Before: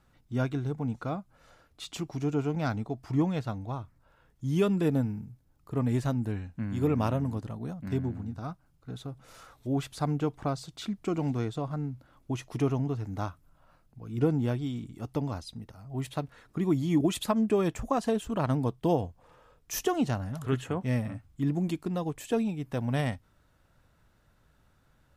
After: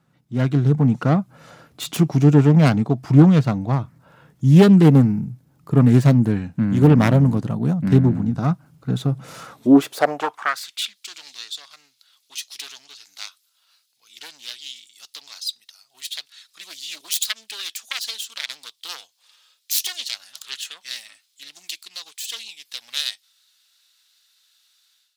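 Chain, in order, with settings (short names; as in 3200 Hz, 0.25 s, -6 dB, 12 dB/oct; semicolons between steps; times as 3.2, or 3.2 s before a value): self-modulated delay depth 0.31 ms; high-pass sweep 150 Hz -> 4000 Hz, 9.45–10.99; AGC gain up to 14 dB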